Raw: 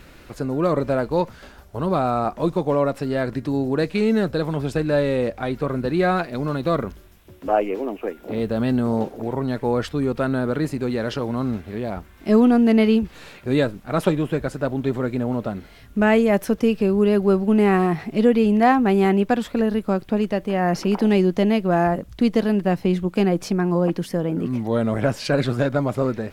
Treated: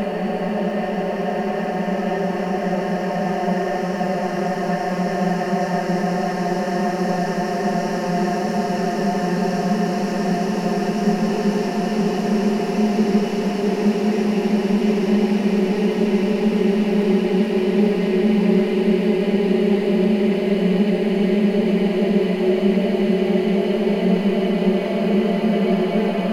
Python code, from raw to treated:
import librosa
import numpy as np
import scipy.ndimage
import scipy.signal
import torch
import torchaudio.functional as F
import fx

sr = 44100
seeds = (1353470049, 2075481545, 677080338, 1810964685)

y = fx.paulstretch(x, sr, seeds[0], factor=24.0, window_s=1.0, from_s=20.39)
y = fx.dmg_crackle(y, sr, seeds[1], per_s=73.0, level_db=-41.0)